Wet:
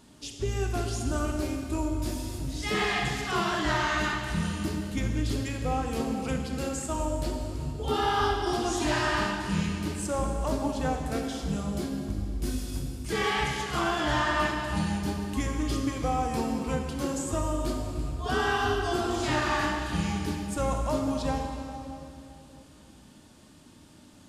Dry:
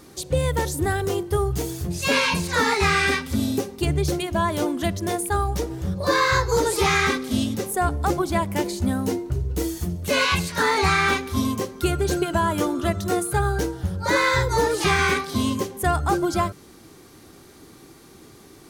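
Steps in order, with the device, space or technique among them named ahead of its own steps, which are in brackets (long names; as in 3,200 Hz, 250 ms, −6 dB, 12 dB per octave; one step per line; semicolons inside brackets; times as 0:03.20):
slowed and reverbed (speed change −23%; convolution reverb RT60 2.8 s, pre-delay 22 ms, DRR 2 dB)
level −8.5 dB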